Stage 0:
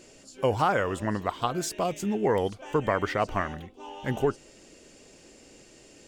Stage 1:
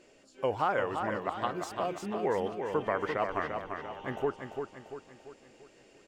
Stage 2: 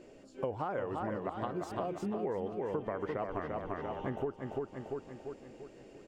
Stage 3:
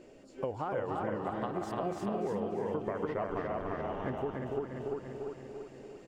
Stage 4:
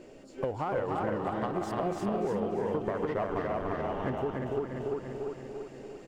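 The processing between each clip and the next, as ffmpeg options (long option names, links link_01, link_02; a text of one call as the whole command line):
ffmpeg -i in.wav -filter_complex "[0:a]bass=frequency=250:gain=-8,treble=frequency=4000:gain=-11,asplit=2[link_01][link_02];[link_02]aecho=0:1:343|686|1029|1372|1715|2058:0.501|0.236|0.111|0.052|0.0245|0.0115[link_03];[link_01][link_03]amix=inputs=2:normalize=0,volume=-4.5dB" out.wav
ffmpeg -i in.wav -af "tiltshelf=frequency=880:gain=6.5,acompressor=threshold=-36dB:ratio=5,volume=2.5dB" out.wav
ffmpeg -i in.wav -af "aecho=1:1:291|582|873|1164|1455:0.668|0.254|0.0965|0.0367|0.0139" out.wav
ffmpeg -i in.wav -af "aeval=exprs='if(lt(val(0),0),0.708*val(0),val(0))':channel_layout=same,aeval=exprs='(tanh(15.8*val(0)+0.55)-tanh(0.55))/15.8':channel_layout=same,volume=8dB" out.wav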